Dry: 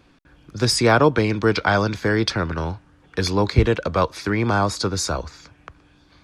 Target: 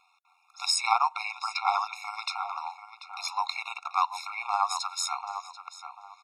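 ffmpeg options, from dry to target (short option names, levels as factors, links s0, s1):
-filter_complex "[0:a]asplit=2[s0][s1];[s1]adelay=738,lowpass=f=2400:p=1,volume=0.355,asplit=2[s2][s3];[s3]adelay=738,lowpass=f=2400:p=1,volume=0.27,asplit=2[s4][s5];[s5]adelay=738,lowpass=f=2400:p=1,volume=0.27[s6];[s0][s2][s4][s6]amix=inputs=4:normalize=0,tremolo=f=87:d=0.519,afftfilt=real='re*eq(mod(floor(b*sr/1024/710),2),1)':imag='im*eq(mod(floor(b*sr/1024/710),2),1)':win_size=1024:overlap=0.75"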